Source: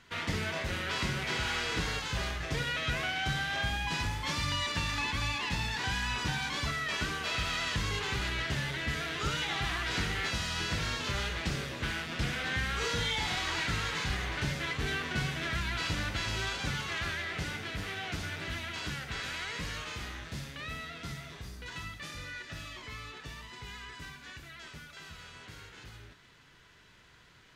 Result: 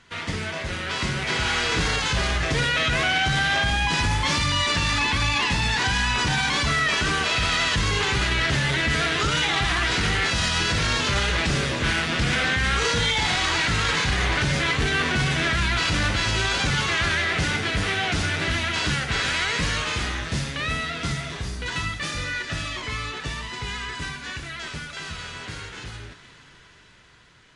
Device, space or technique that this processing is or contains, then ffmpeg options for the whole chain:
low-bitrate web radio: -af "dynaudnorm=f=250:g=13:m=9.5dB,alimiter=limit=-18dB:level=0:latency=1:release=14,volume=4.5dB" -ar 24000 -c:a libmp3lame -b:a 48k

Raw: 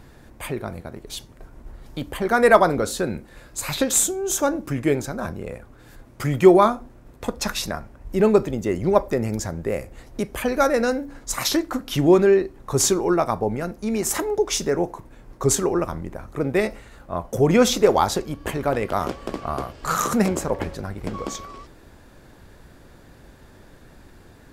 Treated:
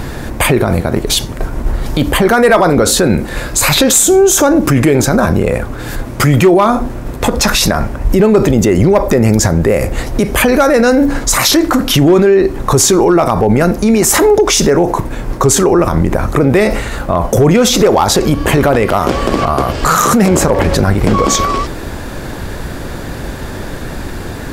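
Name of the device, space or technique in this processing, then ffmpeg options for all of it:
loud club master: -af "acompressor=threshold=-21dB:ratio=2.5,asoftclip=type=hard:threshold=-15dB,alimiter=level_in=26dB:limit=-1dB:release=50:level=0:latency=1,volume=-1dB"

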